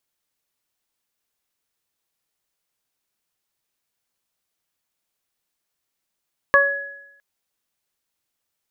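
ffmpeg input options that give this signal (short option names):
-f lavfi -i "aevalsrc='0.178*pow(10,-3*t/0.75)*sin(2*PI*561*t)+0.282*pow(10,-3*t/0.23)*sin(2*PI*1122*t)+0.282*pow(10,-3*t/0.92)*sin(2*PI*1683*t)':d=0.66:s=44100"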